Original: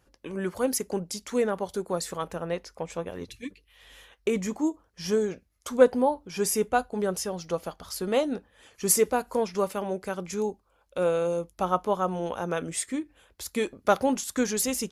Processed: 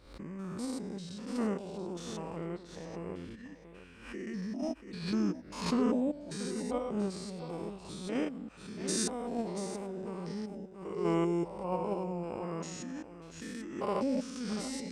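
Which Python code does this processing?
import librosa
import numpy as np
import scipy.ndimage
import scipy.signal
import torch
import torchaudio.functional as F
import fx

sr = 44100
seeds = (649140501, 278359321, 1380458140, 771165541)

p1 = fx.spec_steps(x, sr, hold_ms=200)
p2 = fx.level_steps(p1, sr, step_db=15)
p3 = p1 + F.gain(torch.from_numpy(p2), 1.0).numpy()
p4 = fx.high_shelf(p3, sr, hz=6100.0, db=-5.5)
p5 = p4 + fx.echo_single(p4, sr, ms=684, db=-12.0, dry=0)
p6 = fx.formant_shift(p5, sr, semitones=-4)
p7 = fx.pre_swell(p6, sr, db_per_s=88.0)
y = F.gain(torch.from_numpy(p7), -7.5).numpy()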